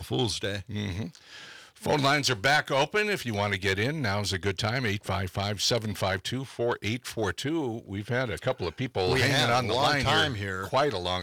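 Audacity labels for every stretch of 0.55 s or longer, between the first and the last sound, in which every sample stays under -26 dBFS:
1.030000	1.860000	silence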